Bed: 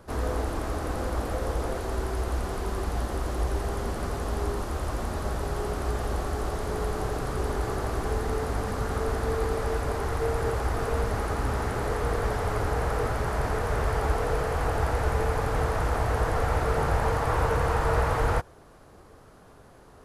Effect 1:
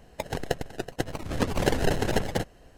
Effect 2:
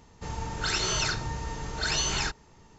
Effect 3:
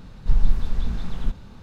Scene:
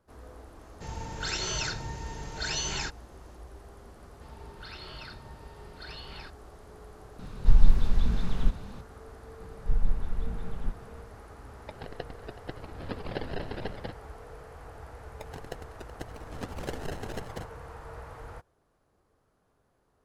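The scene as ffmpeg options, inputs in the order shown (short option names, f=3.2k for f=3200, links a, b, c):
-filter_complex "[2:a]asplit=2[a][b];[3:a]asplit=2[c][d];[1:a]asplit=2[e][f];[0:a]volume=-19.5dB[g];[a]bandreject=f=1.2k:w=6.7[h];[b]aresample=11025,aresample=44100[i];[d]lowpass=2.5k[j];[e]aresample=11025,aresample=44100[k];[h]atrim=end=2.78,asetpts=PTS-STARTPTS,volume=-4dB,afade=t=in:d=0.004:c=hsin,afade=t=out:st=2.776:d=0.004:c=hsin,adelay=590[l];[i]atrim=end=2.78,asetpts=PTS-STARTPTS,volume=-15.5dB,afade=t=in:d=0.004:c=hsin,afade=t=out:st=2.776:d=0.004:c=hsin,adelay=3990[m];[c]atrim=end=1.62,asetpts=PTS-STARTPTS,afade=t=in:d=0.004:c=hsin,afade=t=out:st=1.616:d=0.004:c=hsin,adelay=7190[n];[j]atrim=end=1.62,asetpts=PTS-STARTPTS,volume=-7.5dB,afade=t=in:d=0.004:c=hsin,afade=t=out:st=1.616:d=0.004:c=hsin,adelay=9400[o];[k]atrim=end=2.77,asetpts=PTS-STARTPTS,volume=-11dB,afade=t=in:d=0.004:c=hsin,afade=t=out:st=2.766:d=0.004:c=hsin,adelay=11490[p];[f]atrim=end=2.77,asetpts=PTS-STARTPTS,volume=-12.5dB,afade=t=in:d=0.004:c=hsin,afade=t=out:st=2.766:d=0.004:c=hsin,adelay=15010[q];[g][l][m][n][o][p][q]amix=inputs=7:normalize=0"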